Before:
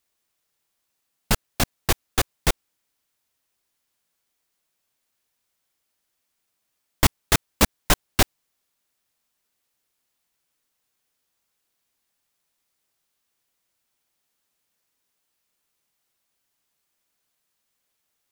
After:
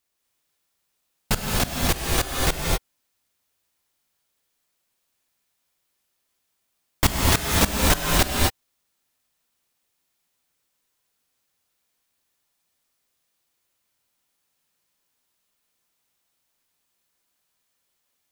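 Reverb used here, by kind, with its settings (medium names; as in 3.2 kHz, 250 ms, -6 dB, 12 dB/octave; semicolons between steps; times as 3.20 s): gated-style reverb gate 280 ms rising, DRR -1.5 dB; trim -2 dB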